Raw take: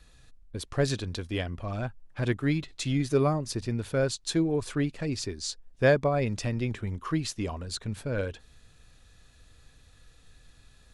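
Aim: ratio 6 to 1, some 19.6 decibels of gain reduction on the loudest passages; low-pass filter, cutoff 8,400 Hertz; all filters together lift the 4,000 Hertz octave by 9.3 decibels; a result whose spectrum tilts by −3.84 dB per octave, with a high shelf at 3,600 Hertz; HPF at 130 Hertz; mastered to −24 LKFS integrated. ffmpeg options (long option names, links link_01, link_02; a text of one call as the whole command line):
ffmpeg -i in.wav -af "highpass=130,lowpass=8400,highshelf=frequency=3600:gain=6,equalizer=frequency=4000:width_type=o:gain=7,acompressor=threshold=-38dB:ratio=6,volume=17dB" out.wav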